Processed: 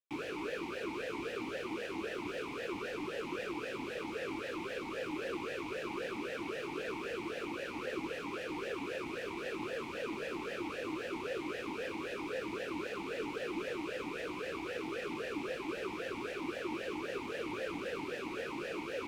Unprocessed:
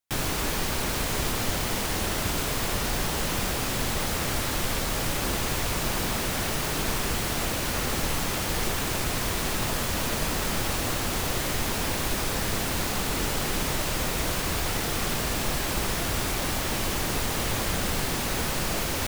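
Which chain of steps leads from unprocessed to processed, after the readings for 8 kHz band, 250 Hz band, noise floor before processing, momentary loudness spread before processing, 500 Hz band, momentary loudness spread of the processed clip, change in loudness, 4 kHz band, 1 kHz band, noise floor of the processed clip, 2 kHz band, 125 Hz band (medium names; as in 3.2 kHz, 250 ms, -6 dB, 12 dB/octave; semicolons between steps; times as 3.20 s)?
-27.5 dB, -8.0 dB, -29 dBFS, 0 LU, -5.0 dB, 1 LU, -12.5 dB, -17.5 dB, -12.0 dB, -43 dBFS, -10.5 dB, -22.5 dB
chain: talking filter e-u 3.8 Hz; trim +2.5 dB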